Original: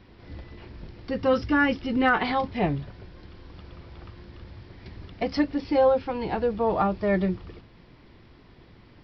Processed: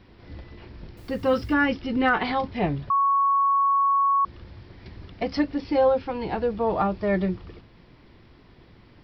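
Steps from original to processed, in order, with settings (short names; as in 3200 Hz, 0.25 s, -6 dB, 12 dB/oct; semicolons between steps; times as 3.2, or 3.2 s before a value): 0.97–1.54 requantised 10-bit, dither triangular; 2.9–4.25 bleep 1110 Hz -17.5 dBFS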